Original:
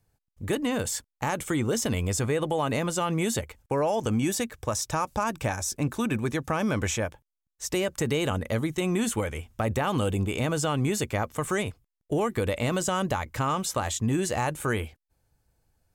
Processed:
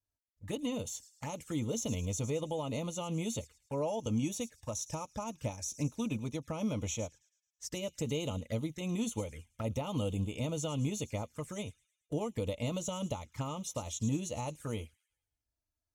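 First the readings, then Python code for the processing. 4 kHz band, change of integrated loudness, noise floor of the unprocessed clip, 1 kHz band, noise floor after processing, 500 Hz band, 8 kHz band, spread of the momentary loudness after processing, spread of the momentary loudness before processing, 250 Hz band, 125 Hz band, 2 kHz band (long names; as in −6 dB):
−9.0 dB, −9.0 dB, −85 dBFS, −14.0 dB, below −85 dBFS, −9.5 dB, −8.0 dB, 7 LU, 5 LU, −7.5 dB, −7.0 dB, −16.5 dB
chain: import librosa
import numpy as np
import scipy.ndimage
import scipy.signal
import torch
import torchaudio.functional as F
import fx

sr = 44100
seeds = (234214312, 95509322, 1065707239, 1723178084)

y = fx.peak_eq(x, sr, hz=5700.0, db=6.5, octaves=0.55)
y = fx.echo_wet_highpass(y, sr, ms=108, feedback_pct=47, hz=4000.0, wet_db=-11)
y = fx.env_flanger(y, sr, rest_ms=3.1, full_db=-24.5)
y = fx.notch_comb(y, sr, f0_hz=380.0)
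y = fx.upward_expand(y, sr, threshold_db=-47.0, expansion=1.5)
y = F.gain(torch.from_numpy(y), -5.0).numpy()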